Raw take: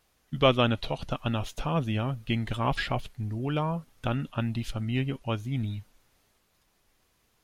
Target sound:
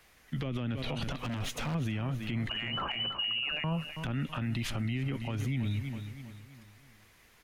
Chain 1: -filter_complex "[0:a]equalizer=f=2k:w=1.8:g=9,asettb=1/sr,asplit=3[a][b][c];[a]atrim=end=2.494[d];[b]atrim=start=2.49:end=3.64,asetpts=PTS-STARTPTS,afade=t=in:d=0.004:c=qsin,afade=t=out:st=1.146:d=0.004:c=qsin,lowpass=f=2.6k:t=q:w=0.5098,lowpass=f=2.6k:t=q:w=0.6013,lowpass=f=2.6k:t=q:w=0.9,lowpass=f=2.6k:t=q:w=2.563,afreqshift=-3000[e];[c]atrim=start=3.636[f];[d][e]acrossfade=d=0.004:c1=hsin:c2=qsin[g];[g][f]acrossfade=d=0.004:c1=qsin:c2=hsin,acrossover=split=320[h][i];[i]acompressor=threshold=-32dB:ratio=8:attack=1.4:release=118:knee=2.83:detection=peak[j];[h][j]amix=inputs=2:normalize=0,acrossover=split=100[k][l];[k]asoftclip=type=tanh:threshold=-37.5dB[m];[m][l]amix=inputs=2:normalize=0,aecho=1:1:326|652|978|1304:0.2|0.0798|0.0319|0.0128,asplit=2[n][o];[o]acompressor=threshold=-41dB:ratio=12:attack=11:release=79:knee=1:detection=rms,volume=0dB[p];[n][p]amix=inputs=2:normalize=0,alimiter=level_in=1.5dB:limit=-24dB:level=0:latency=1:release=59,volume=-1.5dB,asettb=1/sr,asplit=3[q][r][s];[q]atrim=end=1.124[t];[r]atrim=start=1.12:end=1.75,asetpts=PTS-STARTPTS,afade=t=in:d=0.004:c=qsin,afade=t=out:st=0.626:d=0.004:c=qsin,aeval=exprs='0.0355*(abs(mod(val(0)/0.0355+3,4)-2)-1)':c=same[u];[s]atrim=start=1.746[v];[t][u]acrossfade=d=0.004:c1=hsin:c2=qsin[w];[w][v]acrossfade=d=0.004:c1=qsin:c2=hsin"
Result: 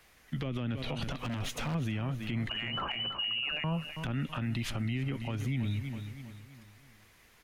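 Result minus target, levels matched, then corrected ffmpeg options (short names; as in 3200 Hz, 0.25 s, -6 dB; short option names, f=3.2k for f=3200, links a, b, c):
compressor: peak gain reduction +7.5 dB
-filter_complex "[0:a]equalizer=f=2k:w=1.8:g=9,asettb=1/sr,asplit=3[a][b][c];[a]atrim=end=2.494[d];[b]atrim=start=2.49:end=3.64,asetpts=PTS-STARTPTS,afade=t=in:d=0.004:c=qsin,afade=t=out:st=1.146:d=0.004:c=qsin,lowpass=f=2.6k:t=q:w=0.5098,lowpass=f=2.6k:t=q:w=0.6013,lowpass=f=2.6k:t=q:w=0.9,lowpass=f=2.6k:t=q:w=2.563,afreqshift=-3000[e];[c]atrim=start=3.636[f];[d][e]acrossfade=d=0.004:c1=hsin:c2=qsin[g];[g][f]acrossfade=d=0.004:c1=qsin:c2=hsin,acrossover=split=320[h][i];[i]acompressor=threshold=-32dB:ratio=8:attack=1.4:release=118:knee=2.83:detection=peak[j];[h][j]amix=inputs=2:normalize=0,acrossover=split=100[k][l];[k]asoftclip=type=tanh:threshold=-37.5dB[m];[m][l]amix=inputs=2:normalize=0,aecho=1:1:326|652|978|1304:0.2|0.0798|0.0319|0.0128,asplit=2[n][o];[o]acompressor=threshold=-33dB:ratio=12:attack=11:release=79:knee=1:detection=rms,volume=0dB[p];[n][p]amix=inputs=2:normalize=0,alimiter=level_in=1.5dB:limit=-24dB:level=0:latency=1:release=59,volume=-1.5dB,asettb=1/sr,asplit=3[q][r][s];[q]atrim=end=1.124[t];[r]atrim=start=1.12:end=1.75,asetpts=PTS-STARTPTS,afade=t=in:d=0.004:c=qsin,afade=t=out:st=0.626:d=0.004:c=qsin,aeval=exprs='0.0355*(abs(mod(val(0)/0.0355+3,4)-2)-1)':c=same[u];[s]atrim=start=1.746[v];[t][u]acrossfade=d=0.004:c1=hsin:c2=qsin[w];[w][v]acrossfade=d=0.004:c1=qsin:c2=hsin"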